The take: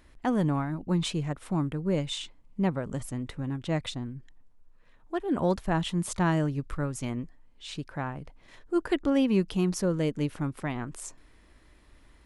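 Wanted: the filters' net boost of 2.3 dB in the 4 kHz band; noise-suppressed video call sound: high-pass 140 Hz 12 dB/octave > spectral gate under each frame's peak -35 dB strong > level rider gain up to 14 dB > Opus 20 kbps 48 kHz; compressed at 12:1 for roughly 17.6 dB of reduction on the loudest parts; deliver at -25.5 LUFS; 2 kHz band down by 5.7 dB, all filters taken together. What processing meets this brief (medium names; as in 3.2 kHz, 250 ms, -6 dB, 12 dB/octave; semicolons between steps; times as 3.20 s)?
peaking EQ 2 kHz -9 dB; peaking EQ 4 kHz +6 dB; compression 12:1, threshold -39 dBFS; high-pass 140 Hz 12 dB/octave; spectral gate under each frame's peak -35 dB strong; level rider gain up to 14 dB; trim +20 dB; Opus 20 kbps 48 kHz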